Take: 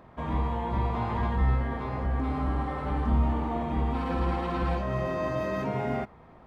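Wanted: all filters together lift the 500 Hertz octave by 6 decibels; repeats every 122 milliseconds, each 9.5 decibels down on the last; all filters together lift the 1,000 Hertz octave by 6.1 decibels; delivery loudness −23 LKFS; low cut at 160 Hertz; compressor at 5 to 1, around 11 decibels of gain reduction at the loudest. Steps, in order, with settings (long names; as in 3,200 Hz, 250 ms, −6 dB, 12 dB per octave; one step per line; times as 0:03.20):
high-pass filter 160 Hz
parametric band 500 Hz +6 dB
parametric band 1,000 Hz +5.5 dB
downward compressor 5 to 1, threshold −35 dBFS
repeating echo 122 ms, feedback 33%, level −9.5 dB
level +14 dB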